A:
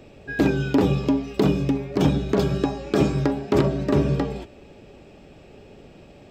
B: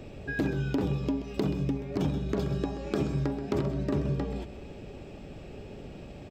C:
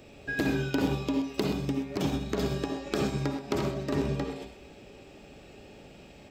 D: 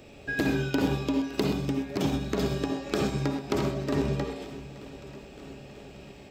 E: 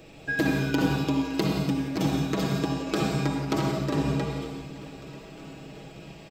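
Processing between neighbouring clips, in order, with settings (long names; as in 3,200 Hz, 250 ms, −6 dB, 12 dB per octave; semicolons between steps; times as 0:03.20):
low-shelf EQ 200 Hz +6.5 dB; downward compressor 2.5 to 1, threshold −32 dBFS, peak gain reduction 14 dB; single-tap delay 130 ms −12 dB
spectral tilt +2 dB per octave; convolution reverb, pre-delay 51 ms, DRR 3 dB; expander for the loud parts 1.5 to 1, over −43 dBFS; level +4 dB
feedback echo with a long and a short gap by turns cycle 939 ms, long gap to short 1.5 to 1, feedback 60%, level −19 dB; level +1.5 dB
comb filter 6.2 ms, depth 65%; reverb whose tail is shaped and stops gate 200 ms rising, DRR 4.5 dB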